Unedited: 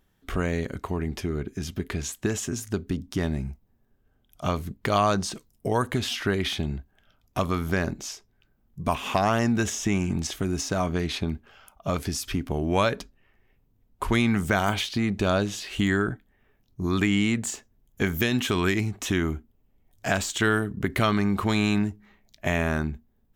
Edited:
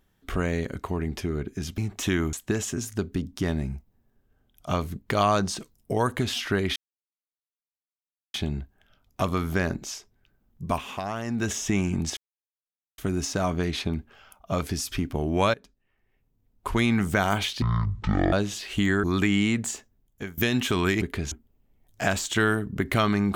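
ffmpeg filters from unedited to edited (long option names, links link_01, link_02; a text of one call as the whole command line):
ffmpeg -i in.wav -filter_complex "[0:a]asplit=14[link_01][link_02][link_03][link_04][link_05][link_06][link_07][link_08][link_09][link_10][link_11][link_12][link_13][link_14];[link_01]atrim=end=1.782[link_15];[link_02]atrim=start=18.808:end=19.362[link_16];[link_03]atrim=start=2.078:end=6.51,asetpts=PTS-STARTPTS,afade=type=out:start_time=4.428:duration=0.004:curve=hsin,apad=pad_dur=1.58[link_17];[link_04]atrim=start=6.51:end=9.13,asetpts=PTS-STARTPTS,afade=type=in:duration=0.004:curve=hsin,afade=type=out:start_time=2.32:duration=0.3:silence=0.354813[link_18];[link_05]atrim=start=9.13:end=9.42,asetpts=PTS-STARTPTS,volume=-9dB[link_19];[link_06]atrim=start=9.42:end=10.34,asetpts=PTS-STARTPTS,afade=type=in:duration=0.3:silence=0.354813,afade=type=out:start_time=0.916:duration=0.004:curve=hsin,apad=pad_dur=0.81[link_20];[link_07]atrim=start=10.34:end=12.9,asetpts=PTS-STARTPTS,afade=type=in:duration=0.004:curve=hsin,afade=type=out:start_time=2.556:duration=0.004:curve=hsin:silence=0.0891251[link_21];[link_08]atrim=start=12.9:end=14.984,asetpts=PTS-STARTPTS,afade=type=in:duration=1.39:silence=0.0891251[link_22];[link_09]atrim=start=14.98:end=15.34,asetpts=PTS-STARTPTS,asetrate=22491,aresample=44100,atrim=end_sample=31129,asetpts=PTS-STARTPTS[link_23];[link_10]atrim=start=15.336:end=16.052[link_24];[link_11]atrim=start=16.828:end=18.17,asetpts=PTS-STARTPTS,afade=type=out:start_time=0.552:duration=0.79:curve=qsin:silence=0.0749894[link_25];[link_12]atrim=start=18.17:end=18.812,asetpts=PTS-STARTPTS,afade=type=in:duration=0.004:curve=hsin:silence=0.0749894[link_26];[link_13]atrim=start=1.778:end=2.082[link_27];[link_14]atrim=start=19.358[link_28];[link_15][link_16]acrossfade=duration=0.004:curve1=hsin:curve2=hsin[link_29];[link_17][link_18][link_19][link_20][link_21][link_22]concat=n=6:v=0:a=1[link_30];[link_29][link_30]acrossfade=duration=0.004:curve1=hsin:curve2=hsin[link_31];[link_31][link_23]acrossfade=duration=0.004:curve1=hsin:curve2=hsin[link_32];[link_32][link_24]acrossfade=duration=0.004:curve1=hsin:curve2=hsin[link_33];[link_25][link_26]concat=n=2:v=0:a=1[link_34];[link_33][link_34]acrossfade=duration=0.004:curve1=hsin:curve2=hsin[link_35];[link_35][link_27]acrossfade=duration=0.004:curve1=hsin:curve2=hsin[link_36];[link_36][link_28]acrossfade=duration=0.004:curve1=hsin:curve2=hsin" out.wav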